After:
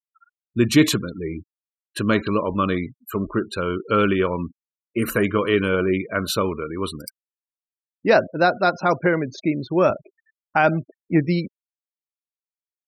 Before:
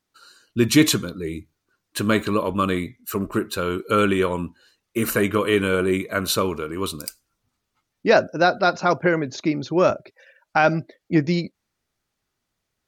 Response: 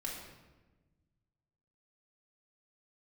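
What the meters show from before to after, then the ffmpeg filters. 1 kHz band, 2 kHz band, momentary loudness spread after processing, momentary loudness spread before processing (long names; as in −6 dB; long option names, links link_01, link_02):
0.0 dB, 0.0 dB, 12 LU, 12 LU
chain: -af "bass=frequency=250:gain=1,treble=frequency=4000:gain=-4,afftfilt=real='re*gte(hypot(re,im),0.0224)':imag='im*gte(hypot(re,im),0.0224)':win_size=1024:overlap=0.75"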